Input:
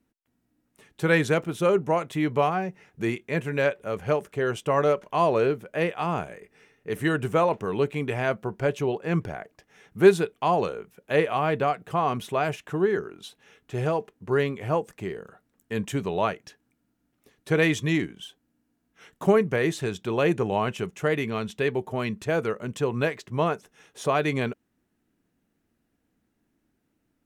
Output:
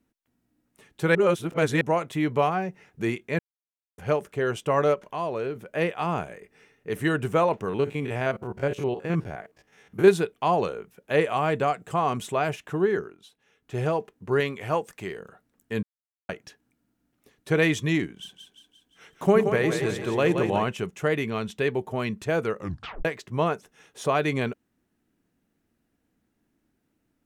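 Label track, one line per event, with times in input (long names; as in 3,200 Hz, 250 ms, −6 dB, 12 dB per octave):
1.150000	1.810000	reverse
3.390000	3.980000	silence
4.940000	5.560000	downward compressor 1.5 to 1, threshold −39 dBFS
7.690000	10.080000	spectrum averaged block by block every 50 ms
11.210000	12.340000	parametric band 7,600 Hz +10.5 dB 0.42 octaves
13.000000	13.750000	duck −10 dB, fades 0.17 s
14.400000	15.200000	tilt shelving filter lows −4 dB, about 720 Hz
15.830000	16.290000	silence
18.160000	20.640000	echo with a time of its own for lows and highs split 400 Hz, lows 80 ms, highs 175 ms, level −6.5 dB
22.570000	22.570000	tape stop 0.48 s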